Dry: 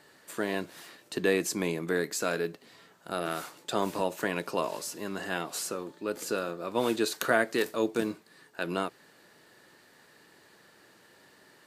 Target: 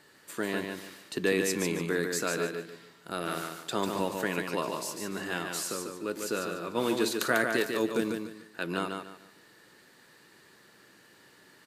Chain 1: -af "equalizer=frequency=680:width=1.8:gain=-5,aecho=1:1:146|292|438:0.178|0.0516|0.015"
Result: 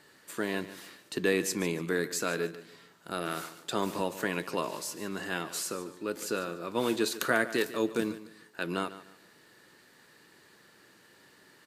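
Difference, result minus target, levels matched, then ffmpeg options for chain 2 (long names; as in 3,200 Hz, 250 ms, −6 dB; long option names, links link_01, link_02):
echo-to-direct −10 dB
-af "equalizer=frequency=680:width=1.8:gain=-5,aecho=1:1:146|292|438|584:0.562|0.163|0.0473|0.0137"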